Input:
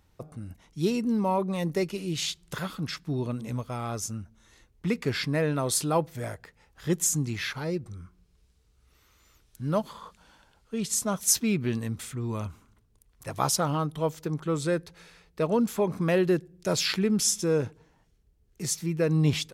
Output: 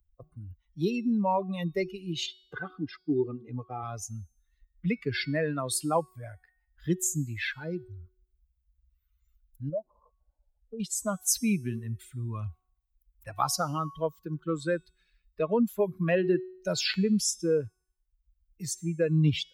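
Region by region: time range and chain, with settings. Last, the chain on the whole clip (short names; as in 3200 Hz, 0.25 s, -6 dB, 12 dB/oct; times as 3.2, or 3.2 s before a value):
2.26–3.83 HPF 260 Hz + tilt -4 dB/oct + comb 2.5 ms, depth 54%
9.69–10.8 synth low-pass 620 Hz, resonance Q 2.6 + compressor 2.5:1, threshold -34 dBFS
whole clip: per-bin expansion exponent 2; de-hum 370.3 Hz, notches 37; three-band squash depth 40%; gain +3.5 dB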